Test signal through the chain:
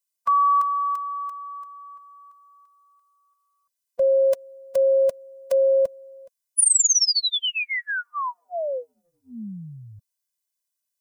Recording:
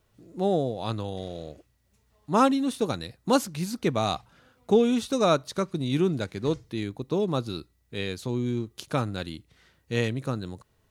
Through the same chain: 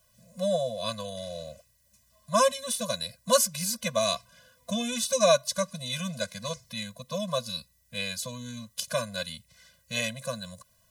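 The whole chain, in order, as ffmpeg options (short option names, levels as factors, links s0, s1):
-filter_complex "[0:a]acrossover=split=190[s0][s1];[s0]acompressor=threshold=0.00708:ratio=6[s2];[s2][s1]amix=inputs=2:normalize=0,bass=f=250:g=-7,treble=f=4000:g=12,afftfilt=real='re*eq(mod(floor(b*sr/1024/240),2),0)':imag='im*eq(mod(floor(b*sr/1024/240),2),0)':win_size=1024:overlap=0.75,volume=1.5"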